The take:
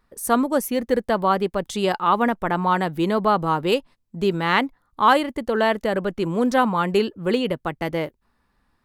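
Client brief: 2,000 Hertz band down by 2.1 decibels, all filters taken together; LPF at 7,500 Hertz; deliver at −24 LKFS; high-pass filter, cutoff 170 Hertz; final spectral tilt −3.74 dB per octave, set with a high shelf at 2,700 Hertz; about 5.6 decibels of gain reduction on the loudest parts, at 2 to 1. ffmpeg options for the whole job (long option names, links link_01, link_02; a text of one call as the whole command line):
ffmpeg -i in.wav -af "highpass=170,lowpass=7500,equalizer=frequency=2000:width_type=o:gain=-5,highshelf=frequency=2700:gain=5.5,acompressor=threshold=-22dB:ratio=2,volume=1.5dB" out.wav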